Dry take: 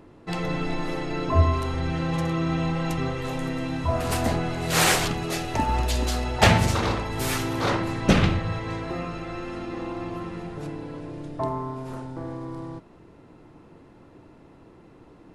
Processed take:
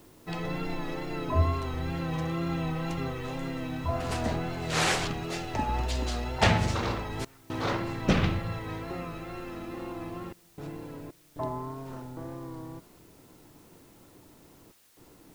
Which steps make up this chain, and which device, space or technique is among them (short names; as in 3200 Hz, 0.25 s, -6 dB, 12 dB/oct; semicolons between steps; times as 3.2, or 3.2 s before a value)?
worn cassette (LPF 7300 Hz 12 dB/oct; wow and flutter; level dips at 7.25/10.33/11.11/14.72, 0.247 s -24 dB; white noise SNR 30 dB); gain -5.5 dB